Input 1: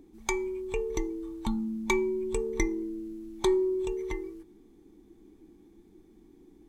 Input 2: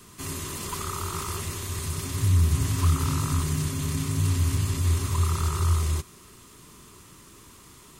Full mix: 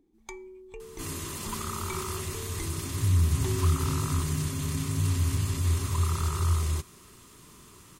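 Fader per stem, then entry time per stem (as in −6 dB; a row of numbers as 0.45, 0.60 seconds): −12.5, −2.5 decibels; 0.00, 0.80 seconds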